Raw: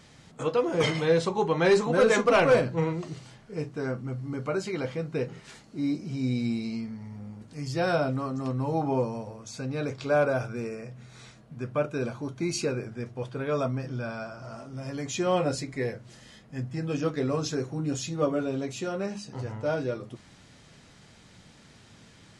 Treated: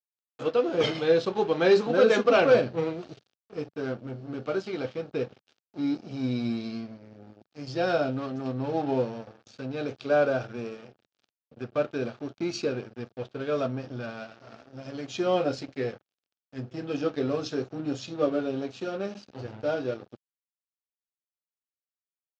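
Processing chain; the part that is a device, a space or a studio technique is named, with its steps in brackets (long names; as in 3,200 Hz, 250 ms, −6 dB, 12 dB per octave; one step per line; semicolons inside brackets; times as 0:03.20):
blown loudspeaker (dead-zone distortion −41 dBFS; loudspeaker in its box 120–5,100 Hz, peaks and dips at 160 Hz −9 dB, 1,000 Hz −9 dB, 2,000 Hz −8 dB)
level +2.5 dB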